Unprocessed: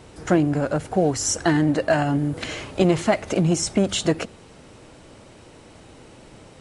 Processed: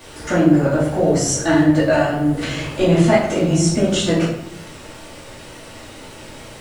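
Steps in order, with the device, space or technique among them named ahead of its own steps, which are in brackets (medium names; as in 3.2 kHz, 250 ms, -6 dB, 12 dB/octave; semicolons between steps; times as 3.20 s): noise-reduction cassette on a plain deck (tape noise reduction on one side only encoder only; wow and flutter; white noise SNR 35 dB); simulated room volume 180 m³, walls mixed, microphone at 2.5 m; trim -4.5 dB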